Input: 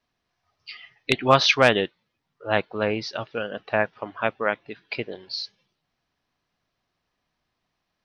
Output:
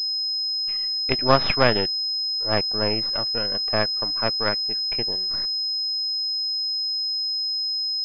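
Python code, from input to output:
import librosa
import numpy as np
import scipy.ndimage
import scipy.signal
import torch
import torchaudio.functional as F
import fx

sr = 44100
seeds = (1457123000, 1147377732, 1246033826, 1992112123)

y = np.where(x < 0.0, 10.0 ** (-12.0 / 20.0) * x, x)
y = fx.pwm(y, sr, carrier_hz=5100.0)
y = y * librosa.db_to_amplitude(1.5)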